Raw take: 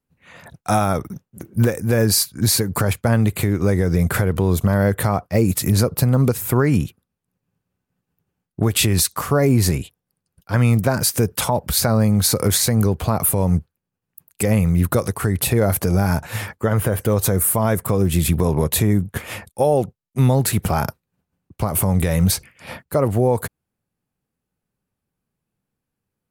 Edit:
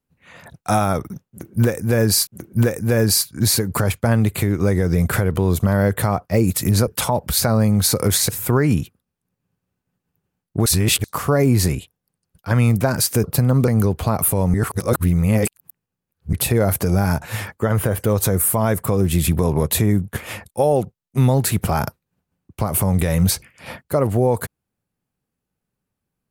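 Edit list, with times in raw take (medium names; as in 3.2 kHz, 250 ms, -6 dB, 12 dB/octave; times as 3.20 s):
1.28–2.27 s: loop, 2 plays
5.88–6.32 s: swap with 11.27–12.69 s
8.69–9.07 s: reverse
13.55–15.34 s: reverse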